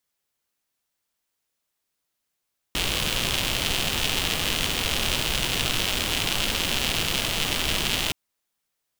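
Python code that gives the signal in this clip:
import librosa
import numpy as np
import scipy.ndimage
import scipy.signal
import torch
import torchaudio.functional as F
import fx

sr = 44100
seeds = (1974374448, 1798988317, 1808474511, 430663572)

y = fx.rain(sr, seeds[0], length_s=5.37, drops_per_s=170.0, hz=3000.0, bed_db=-0.5)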